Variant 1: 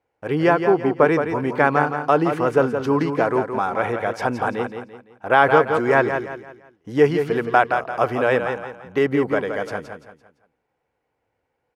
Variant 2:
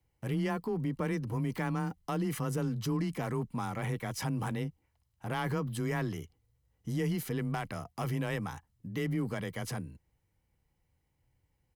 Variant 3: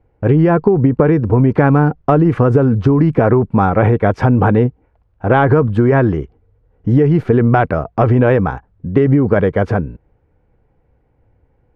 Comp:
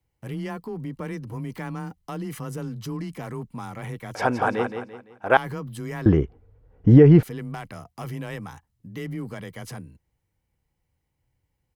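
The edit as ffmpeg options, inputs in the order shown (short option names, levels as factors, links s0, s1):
-filter_complex "[1:a]asplit=3[s0][s1][s2];[s0]atrim=end=4.152[s3];[0:a]atrim=start=4.148:end=5.372[s4];[s1]atrim=start=5.368:end=6.062[s5];[2:a]atrim=start=6.058:end=7.232[s6];[s2]atrim=start=7.228[s7];[s3][s4]acrossfade=d=0.004:c1=hsin:c2=hsin[s8];[s8][s5]acrossfade=d=0.004:c1=hsin:c2=hsin[s9];[s9][s6]acrossfade=d=0.004:c1=hsin:c2=hsin[s10];[s10][s7]acrossfade=d=0.004:c1=hsin:c2=hsin"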